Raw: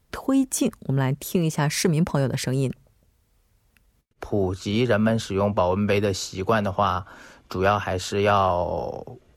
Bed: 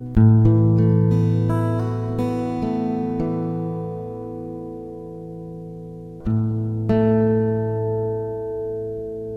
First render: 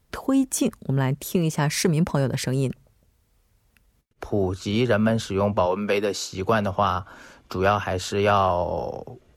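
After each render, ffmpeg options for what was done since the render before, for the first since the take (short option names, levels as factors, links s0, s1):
-filter_complex "[0:a]asettb=1/sr,asplit=3[s0][s1][s2];[s0]atrim=end=5.664[s3];[s1]atrim=start=5.66:end=6.33,asetpts=PTS-STARTPTS,afade=t=in:d=0.004:c=qsin,afade=t=out:st=0.666:d=0.004:c=qsin,highpass=240[s4];[s2]atrim=start=6.326[s5];[s3][s4]acrossfade=d=0.004:c1=hsin:c2=qsin[s6];[s6][s5]acrossfade=d=0.004:c1=qsin:c2=hsin"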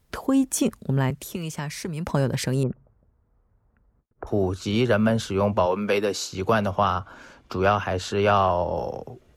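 -filter_complex "[0:a]asettb=1/sr,asplit=3[s0][s1][s2];[s0]atrim=end=1.104[s3];[s1]atrim=start=1.1:end=2.07,asetpts=PTS-STARTPTS,afade=t=in:d=0.004:c=qsin,afade=t=out:st=0.966:d=0.004:c=qsin,acrossover=split=120|1100[s4][s5][s6];[s4]acompressor=threshold=0.0126:ratio=4[s7];[s5]acompressor=threshold=0.0224:ratio=4[s8];[s6]acompressor=threshold=0.0158:ratio=4[s9];[s7][s8][s9]amix=inputs=3:normalize=0[s10];[s2]atrim=start=2.066[s11];[s3][s10]acrossfade=d=0.004:c1=hsin:c2=qsin[s12];[s12][s11]acrossfade=d=0.004:c1=qsin:c2=hsin,asettb=1/sr,asplit=3[s13][s14][s15];[s13]atrim=end=2.634[s16];[s14]atrim=start=2.63:end=4.27,asetpts=PTS-STARTPTS,afade=t=in:d=0.004:c=qsin,afade=t=out:st=1.636:d=0.004:c=qsin,lowpass=f=1400:w=0.5412,lowpass=f=1400:w=1.3066[s17];[s15]atrim=start=4.266[s18];[s16][s17]acrossfade=d=0.004:c1=hsin:c2=qsin[s19];[s19][s18]acrossfade=d=0.004:c1=qsin:c2=hsin,asettb=1/sr,asplit=3[s20][s21][s22];[s20]atrim=end=6.844[s23];[s21]atrim=start=6.84:end=8.75,asetpts=PTS-STARTPTS,afade=t=in:d=0.004:c=qsin,afade=t=out:st=1.906:d=0.004:c=qsin,highshelf=f=9600:g=-11.5[s24];[s22]atrim=start=8.746[s25];[s23][s24]acrossfade=d=0.004:c1=hsin:c2=qsin[s26];[s26][s25]acrossfade=d=0.004:c1=qsin:c2=hsin"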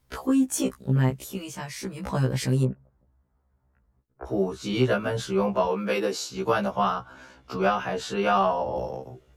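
-af "afftfilt=real='re*1.73*eq(mod(b,3),0)':imag='im*1.73*eq(mod(b,3),0)':win_size=2048:overlap=0.75"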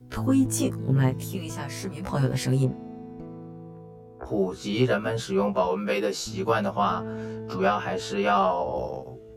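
-filter_complex "[1:a]volume=0.141[s0];[0:a][s0]amix=inputs=2:normalize=0"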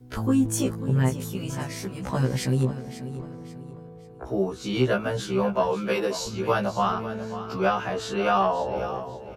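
-af "aecho=1:1:540|1080|1620:0.224|0.0784|0.0274"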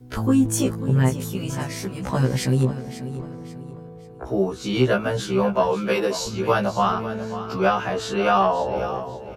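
-af "volume=1.5"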